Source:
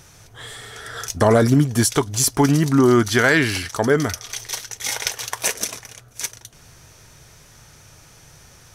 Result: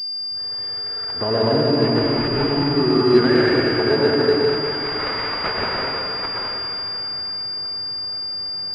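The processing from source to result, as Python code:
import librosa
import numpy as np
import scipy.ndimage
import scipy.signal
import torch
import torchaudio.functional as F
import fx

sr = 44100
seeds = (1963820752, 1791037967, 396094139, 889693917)

p1 = scipy.signal.sosfilt(scipy.signal.butter(2, 91.0, 'highpass', fs=sr, output='sos'), x)
p2 = fx.peak_eq(p1, sr, hz=390.0, db=4.5, octaves=0.59)
p3 = fx.rider(p2, sr, range_db=4, speed_s=2.0)
p4 = p3 + fx.echo_stepped(p3, sr, ms=201, hz=410.0, octaves=0.7, feedback_pct=70, wet_db=-3.5, dry=0)
p5 = fx.rev_plate(p4, sr, seeds[0], rt60_s=3.0, hf_ratio=1.0, predelay_ms=95, drr_db=-6.0)
p6 = np.repeat(p5[::6], 6)[:len(p5)]
p7 = fx.pwm(p6, sr, carrier_hz=4800.0)
y = F.gain(torch.from_numpy(p7), -8.5).numpy()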